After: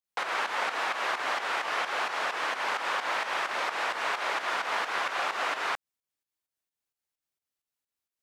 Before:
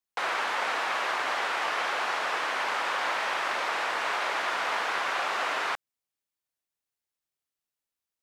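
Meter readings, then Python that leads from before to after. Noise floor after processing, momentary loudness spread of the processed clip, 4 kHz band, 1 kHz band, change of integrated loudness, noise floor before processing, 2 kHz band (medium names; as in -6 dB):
under -85 dBFS, 1 LU, -1.5 dB, -1.5 dB, -1.5 dB, under -85 dBFS, -1.5 dB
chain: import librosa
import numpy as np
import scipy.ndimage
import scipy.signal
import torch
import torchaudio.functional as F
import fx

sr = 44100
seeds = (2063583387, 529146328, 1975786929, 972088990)

y = fx.volume_shaper(x, sr, bpm=130, per_beat=2, depth_db=-10, release_ms=173.0, shape='fast start')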